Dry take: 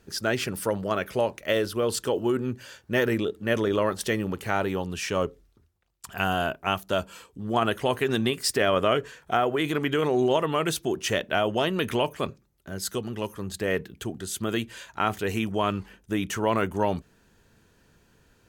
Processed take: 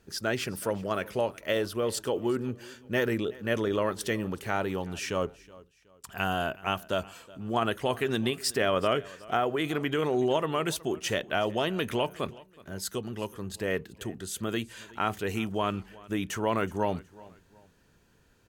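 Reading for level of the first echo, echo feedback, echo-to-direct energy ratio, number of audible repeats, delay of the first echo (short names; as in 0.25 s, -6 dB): -21.5 dB, 34%, -21.0 dB, 2, 0.371 s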